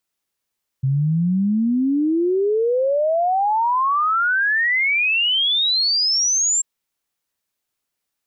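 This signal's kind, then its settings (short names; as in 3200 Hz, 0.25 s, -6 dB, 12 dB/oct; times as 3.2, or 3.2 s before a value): log sweep 130 Hz -> 7500 Hz 5.79 s -15.5 dBFS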